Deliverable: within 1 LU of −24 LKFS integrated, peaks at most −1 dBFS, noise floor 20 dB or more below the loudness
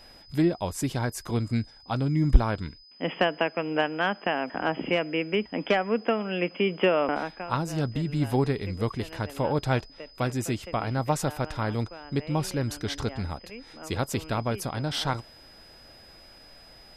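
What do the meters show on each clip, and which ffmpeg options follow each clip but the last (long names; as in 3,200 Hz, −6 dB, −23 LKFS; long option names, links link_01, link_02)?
interfering tone 5,000 Hz; level of the tone −51 dBFS; integrated loudness −28.5 LKFS; sample peak −3.5 dBFS; target loudness −24.0 LKFS
→ -af "bandreject=frequency=5000:width=30"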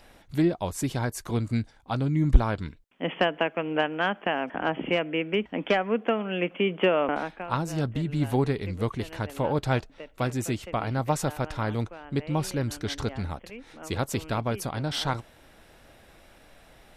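interfering tone none found; integrated loudness −28.5 LKFS; sample peak −3.5 dBFS; target loudness −24.0 LKFS
→ -af "volume=4.5dB,alimiter=limit=-1dB:level=0:latency=1"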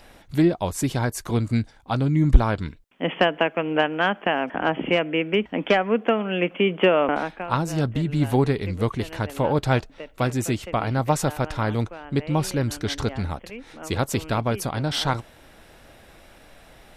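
integrated loudness −24.0 LKFS; sample peak −1.0 dBFS; background noise floor −51 dBFS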